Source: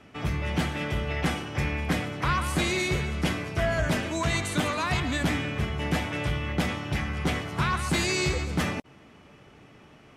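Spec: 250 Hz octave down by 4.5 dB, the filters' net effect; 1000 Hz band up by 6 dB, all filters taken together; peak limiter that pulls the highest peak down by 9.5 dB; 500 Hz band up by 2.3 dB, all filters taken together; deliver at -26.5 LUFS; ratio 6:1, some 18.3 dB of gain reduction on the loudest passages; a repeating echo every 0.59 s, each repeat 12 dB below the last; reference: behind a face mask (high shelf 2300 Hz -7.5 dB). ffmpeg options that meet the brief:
-af "equalizer=f=250:t=o:g=-8.5,equalizer=f=500:t=o:g=3,equalizer=f=1k:t=o:g=8.5,acompressor=threshold=-38dB:ratio=6,alimiter=level_in=9.5dB:limit=-24dB:level=0:latency=1,volume=-9.5dB,highshelf=f=2.3k:g=-7.5,aecho=1:1:590|1180|1770:0.251|0.0628|0.0157,volume=17.5dB"

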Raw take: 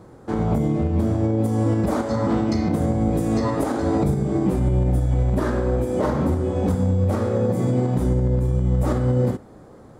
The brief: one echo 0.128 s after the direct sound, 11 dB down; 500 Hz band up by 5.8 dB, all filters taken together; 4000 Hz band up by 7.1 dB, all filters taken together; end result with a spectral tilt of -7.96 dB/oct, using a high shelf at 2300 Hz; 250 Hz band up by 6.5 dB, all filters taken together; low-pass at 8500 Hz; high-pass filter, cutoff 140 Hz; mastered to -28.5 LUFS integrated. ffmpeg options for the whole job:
-af "highpass=140,lowpass=8.5k,equalizer=f=250:t=o:g=7.5,equalizer=f=500:t=o:g=4.5,highshelf=f=2.3k:g=3.5,equalizer=f=4k:t=o:g=5.5,aecho=1:1:128:0.282,volume=-11.5dB"

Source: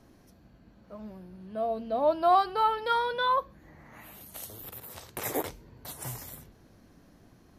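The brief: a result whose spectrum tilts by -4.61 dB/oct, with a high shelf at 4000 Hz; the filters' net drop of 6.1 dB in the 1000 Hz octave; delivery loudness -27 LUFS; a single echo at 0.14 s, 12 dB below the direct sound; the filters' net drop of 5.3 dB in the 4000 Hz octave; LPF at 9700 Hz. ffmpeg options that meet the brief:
-af "lowpass=9.7k,equalizer=f=1k:t=o:g=-8,highshelf=f=4k:g=-3.5,equalizer=f=4k:t=o:g=-4,aecho=1:1:140:0.251,volume=6dB"

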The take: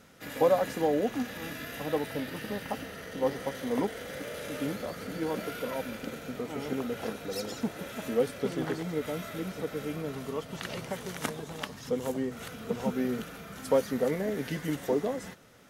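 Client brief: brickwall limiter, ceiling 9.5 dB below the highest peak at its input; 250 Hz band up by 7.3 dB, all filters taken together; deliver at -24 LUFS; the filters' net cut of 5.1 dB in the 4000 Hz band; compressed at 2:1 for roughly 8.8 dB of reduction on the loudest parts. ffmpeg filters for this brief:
-af "equalizer=f=250:t=o:g=8.5,equalizer=f=4k:t=o:g=-7,acompressor=threshold=-34dB:ratio=2,volume=13dB,alimiter=limit=-13.5dB:level=0:latency=1"

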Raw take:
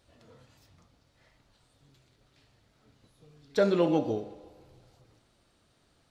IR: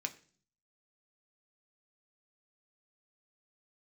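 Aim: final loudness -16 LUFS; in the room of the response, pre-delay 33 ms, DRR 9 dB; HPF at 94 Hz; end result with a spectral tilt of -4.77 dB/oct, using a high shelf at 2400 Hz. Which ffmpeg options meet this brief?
-filter_complex "[0:a]highpass=94,highshelf=f=2.4k:g=8,asplit=2[a][b];[1:a]atrim=start_sample=2205,adelay=33[c];[b][c]afir=irnorm=-1:irlink=0,volume=-9dB[d];[a][d]amix=inputs=2:normalize=0,volume=11dB"

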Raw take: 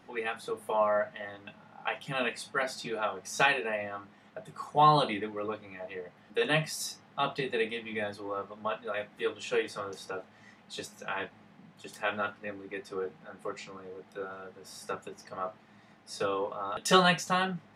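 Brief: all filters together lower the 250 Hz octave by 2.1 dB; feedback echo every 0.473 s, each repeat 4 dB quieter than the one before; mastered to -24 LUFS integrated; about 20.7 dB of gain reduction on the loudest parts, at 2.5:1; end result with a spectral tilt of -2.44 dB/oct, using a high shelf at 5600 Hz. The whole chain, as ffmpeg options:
-af "equalizer=f=250:t=o:g=-3.5,highshelf=f=5.6k:g=8,acompressor=threshold=-50dB:ratio=2.5,aecho=1:1:473|946|1419|1892|2365|2838|3311|3784|4257:0.631|0.398|0.25|0.158|0.0994|0.0626|0.0394|0.0249|0.0157,volume=21dB"

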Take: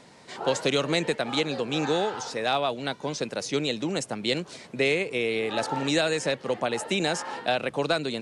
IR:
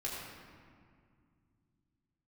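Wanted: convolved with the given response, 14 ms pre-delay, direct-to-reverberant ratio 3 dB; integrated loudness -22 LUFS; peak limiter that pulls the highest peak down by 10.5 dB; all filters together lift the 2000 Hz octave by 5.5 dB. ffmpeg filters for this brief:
-filter_complex "[0:a]equalizer=f=2k:t=o:g=7,alimiter=limit=-17.5dB:level=0:latency=1,asplit=2[a][b];[1:a]atrim=start_sample=2205,adelay=14[c];[b][c]afir=irnorm=-1:irlink=0,volume=-5.5dB[d];[a][d]amix=inputs=2:normalize=0,volume=5dB"

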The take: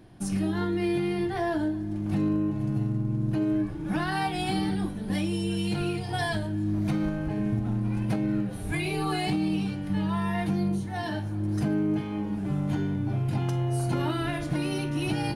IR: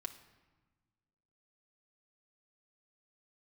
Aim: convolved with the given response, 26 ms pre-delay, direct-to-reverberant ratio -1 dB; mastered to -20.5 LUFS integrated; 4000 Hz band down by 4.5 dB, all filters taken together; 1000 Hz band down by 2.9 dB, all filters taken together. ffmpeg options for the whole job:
-filter_complex "[0:a]equalizer=f=1k:t=o:g=-4,equalizer=f=4k:t=o:g=-6,asplit=2[a][b];[1:a]atrim=start_sample=2205,adelay=26[c];[b][c]afir=irnorm=-1:irlink=0,volume=3dB[d];[a][d]amix=inputs=2:normalize=0,volume=3.5dB"

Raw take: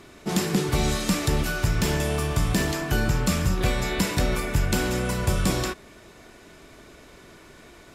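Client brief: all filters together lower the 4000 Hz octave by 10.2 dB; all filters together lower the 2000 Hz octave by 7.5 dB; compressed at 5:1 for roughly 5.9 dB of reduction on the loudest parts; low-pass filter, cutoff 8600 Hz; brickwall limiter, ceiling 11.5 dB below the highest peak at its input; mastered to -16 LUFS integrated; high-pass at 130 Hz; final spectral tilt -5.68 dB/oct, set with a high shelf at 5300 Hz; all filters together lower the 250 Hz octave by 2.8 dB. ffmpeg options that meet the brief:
-af "highpass=130,lowpass=8.6k,equalizer=f=250:t=o:g=-3,equalizer=f=2k:t=o:g=-8,equalizer=f=4k:t=o:g=-8.5,highshelf=f=5.3k:g=-5,acompressor=threshold=-29dB:ratio=5,volume=21.5dB,alimiter=limit=-7dB:level=0:latency=1"

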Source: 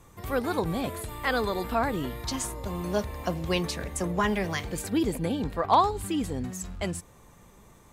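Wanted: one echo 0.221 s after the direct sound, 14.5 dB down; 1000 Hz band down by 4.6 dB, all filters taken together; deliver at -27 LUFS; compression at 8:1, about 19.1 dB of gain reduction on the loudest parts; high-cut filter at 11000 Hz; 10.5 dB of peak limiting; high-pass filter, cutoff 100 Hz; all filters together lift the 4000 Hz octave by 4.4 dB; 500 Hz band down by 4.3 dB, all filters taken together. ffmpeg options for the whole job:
-af "highpass=100,lowpass=11k,equalizer=f=500:t=o:g=-4.5,equalizer=f=1k:t=o:g=-4.5,equalizer=f=4k:t=o:g=6,acompressor=threshold=-40dB:ratio=8,alimiter=level_in=12.5dB:limit=-24dB:level=0:latency=1,volume=-12.5dB,aecho=1:1:221:0.188,volume=18.5dB"

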